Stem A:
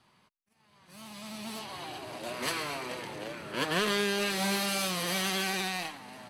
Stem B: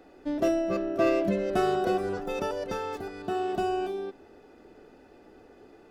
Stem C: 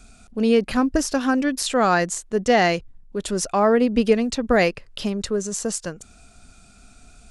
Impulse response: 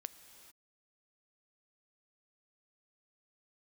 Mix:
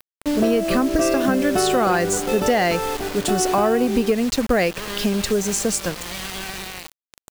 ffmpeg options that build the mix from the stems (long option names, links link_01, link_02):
-filter_complex "[0:a]lowpass=5600,adelay=1000,volume=-7.5dB[link_01];[1:a]volume=2.5dB[link_02];[2:a]aeval=exprs='val(0)+0.00398*(sin(2*PI*50*n/s)+sin(2*PI*2*50*n/s)/2+sin(2*PI*3*50*n/s)/3+sin(2*PI*4*50*n/s)/4+sin(2*PI*5*50*n/s)/5)':channel_layout=same,volume=-1.5dB,asplit=2[link_03][link_04];[link_04]apad=whole_len=321672[link_05];[link_01][link_05]sidechaincompress=threshold=-28dB:ratio=6:attack=5.2:release=237[link_06];[link_06][link_02][link_03]amix=inputs=3:normalize=0,acontrast=68,acrusher=bits=4:mix=0:aa=0.000001,acompressor=threshold=-15dB:ratio=6"